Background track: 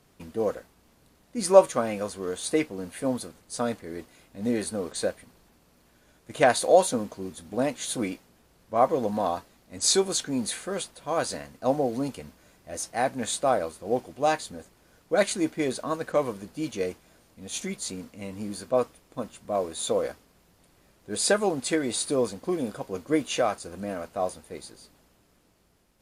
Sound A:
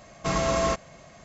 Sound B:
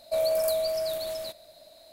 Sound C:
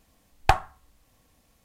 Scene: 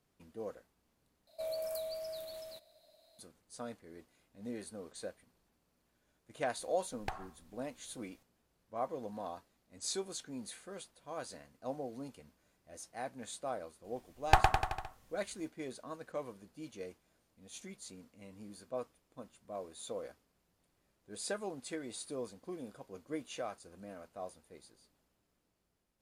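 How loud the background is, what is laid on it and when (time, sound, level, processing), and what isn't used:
background track -16 dB
1.27 replace with B -13.5 dB
6.59 add C -6 dB + compressor 3:1, threshold -33 dBFS
13.84 add C -5 dB + bouncing-ball echo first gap 0.11 s, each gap 0.9×, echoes 6
not used: A

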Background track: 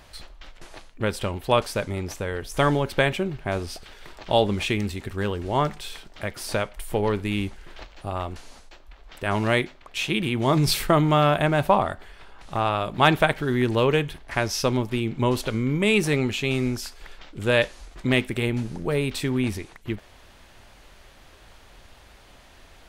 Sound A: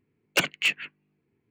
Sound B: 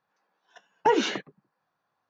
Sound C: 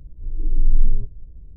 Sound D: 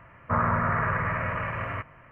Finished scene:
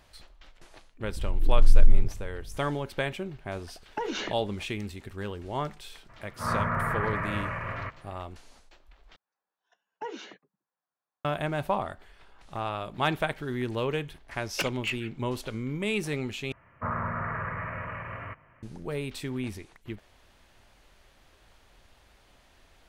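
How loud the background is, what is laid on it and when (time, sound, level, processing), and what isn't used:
background track -9 dB
1.03 add C -1.5 dB + backwards sustainer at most 62 dB/s
3.12 add B -2 dB + compressor, threshold -26 dBFS
6.08 add D -3 dB, fades 0.02 s + auto swell 0.14 s
9.16 replace with B -15.5 dB + HPF 210 Hz 6 dB/oct
14.22 add A -8 dB
16.52 replace with D -7 dB

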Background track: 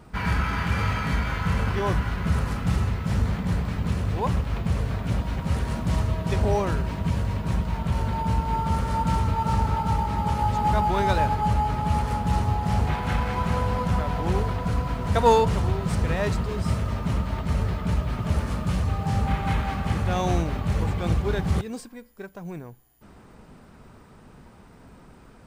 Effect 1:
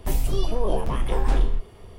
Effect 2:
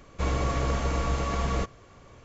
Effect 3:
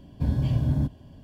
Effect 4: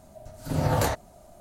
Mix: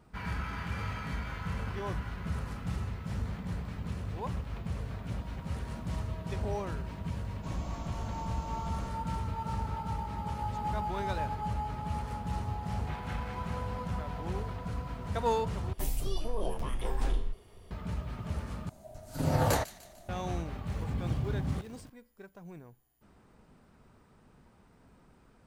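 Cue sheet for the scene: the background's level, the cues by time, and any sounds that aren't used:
background track -11.5 dB
7.24 add 2 -12.5 dB + fixed phaser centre 440 Hz, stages 6
15.73 replace with 1 -10 dB + high shelf 3400 Hz +6 dB
18.69 replace with 4 -3 dB + thin delay 0.149 s, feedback 47%, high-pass 2400 Hz, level -13.5 dB
20.67 add 3 -11.5 dB + zero-crossing step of -37.5 dBFS

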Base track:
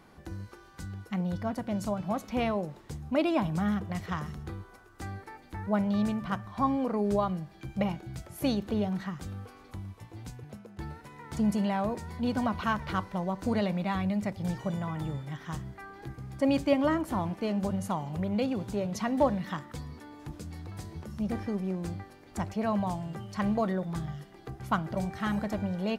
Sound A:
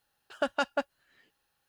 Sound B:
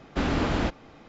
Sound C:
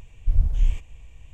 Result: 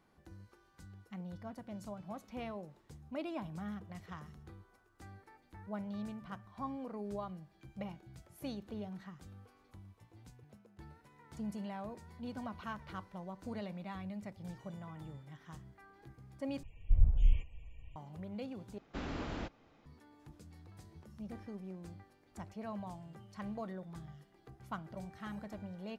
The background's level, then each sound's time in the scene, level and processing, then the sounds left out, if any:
base track -14 dB
16.63 replace with C -6.5 dB + loudest bins only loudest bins 64
18.78 replace with B -15 dB
not used: A

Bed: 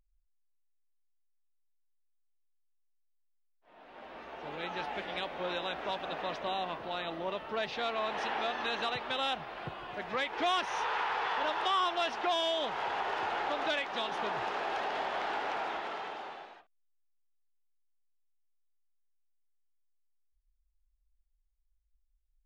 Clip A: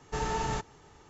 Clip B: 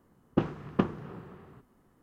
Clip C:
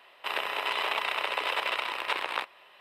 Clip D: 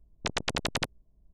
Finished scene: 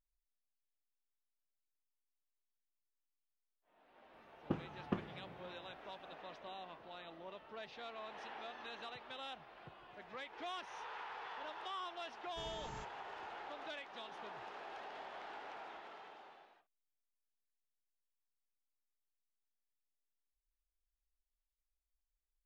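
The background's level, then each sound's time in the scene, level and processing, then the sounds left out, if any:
bed -15 dB
4.13 add B -12 dB
12.24 add A -17.5 dB
not used: C, D

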